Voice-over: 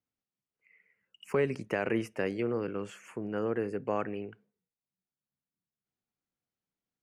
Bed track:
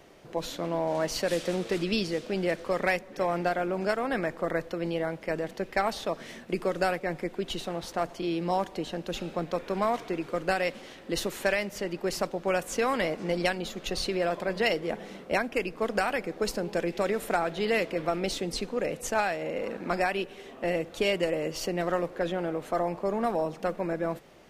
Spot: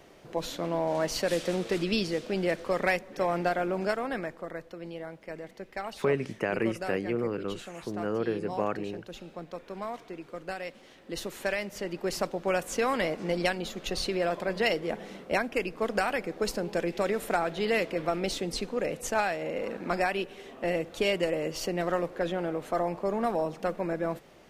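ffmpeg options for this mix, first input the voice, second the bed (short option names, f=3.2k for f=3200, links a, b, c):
-filter_complex "[0:a]adelay=4700,volume=1.5dB[a];[1:a]volume=9dB,afade=t=out:st=3.76:d=0.72:silence=0.334965,afade=t=in:st=10.75:d=1.47:silence=0.354813[b];[a][b]amix=inputs=2:normalize=0"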